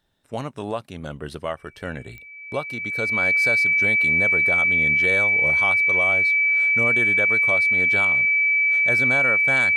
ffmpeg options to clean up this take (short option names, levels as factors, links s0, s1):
-af "adeclick=t=4,bandreject=f=2300:w=30"